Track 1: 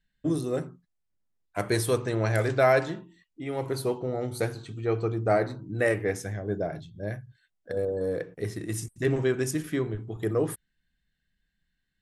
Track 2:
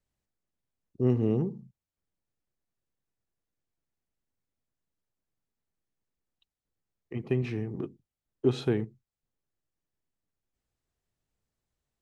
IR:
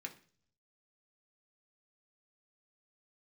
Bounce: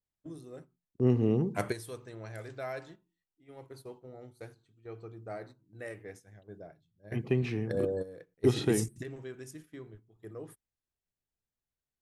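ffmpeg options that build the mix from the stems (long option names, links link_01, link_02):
-filter_complex "[0:a]volume=-3dB[link_01];[1:a]volume=-0.5dB,asplit=3[link_02][link_03][link_04];[link_03]volume=-21.5dB[link_05];[link_04]apad=whole_len=529854[link_06];[link_01][link_06]sidechaingate=range=-15dB:threshold=-53dB:ratio=16:detection=peak[link_07];[2:a]atrim=start_sample=2205[link_08];[link_05][link_08]afir=irnorm=-1:irlink=0[link_09];[link_07][link_02][link_09]amix=inputs=3:normalize=0,agate=range=-10dB:threshold=-50dB:ratio=16:detection=peak,adynamicequalizer=threshold=0.00316:dfrequency=2400:dqfactor=0.7:tfrequency=2400:tqfactor=0.7:attack=5:release=100:ratio=0.375:range=1.5:mode=boostabove:tftype=highshelf"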